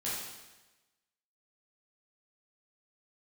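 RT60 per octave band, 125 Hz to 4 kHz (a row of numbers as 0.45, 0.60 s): 1.1, 1.1, 1.1, 1.1, 1.1, 1.1 s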